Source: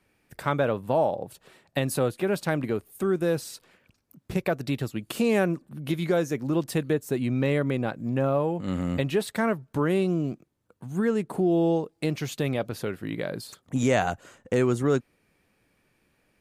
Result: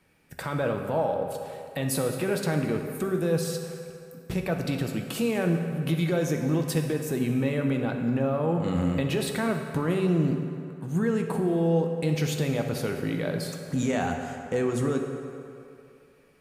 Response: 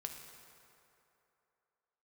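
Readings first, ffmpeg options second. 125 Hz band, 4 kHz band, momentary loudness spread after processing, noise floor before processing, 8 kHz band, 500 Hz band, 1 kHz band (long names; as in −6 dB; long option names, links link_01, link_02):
+2.0 dB, +1.0 dB, 9 LU, −71 dBFS, +2.5 dB, −1.5 dB, −2.0 dB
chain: -filter_complex "[0:a]alimiter=limit=-22dB:level=0:latency=1[link_01];[1:a]atrim=start_sample=2205,asetrate=48510,aresample=44100[link_02];[link_01][link_02]afir=irnorm=-1:irlink=0,volume=7.5dB"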